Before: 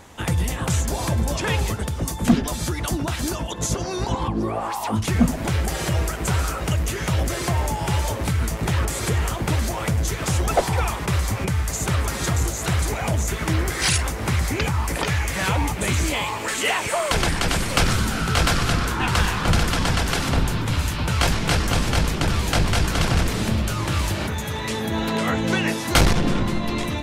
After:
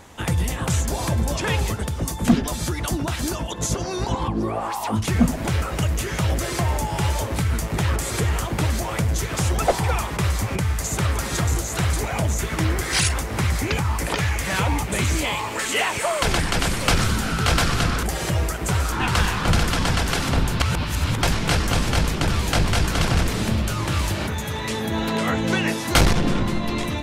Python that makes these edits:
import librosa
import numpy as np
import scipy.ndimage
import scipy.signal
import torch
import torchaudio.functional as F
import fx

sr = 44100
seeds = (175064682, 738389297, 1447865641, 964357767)

y = fx.edit(x, sr, fx.move(start_s=5.62, length_s=0.89, to_s=18.92),
    fx.reverse_span(start_s=20.6, length_s=0.63), tone=tone)